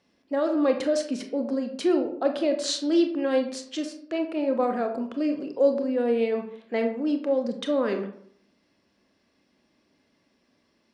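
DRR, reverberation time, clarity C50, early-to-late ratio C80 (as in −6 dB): 5.0 dB, 0.65 s, 9.0 dB, 12.0 dB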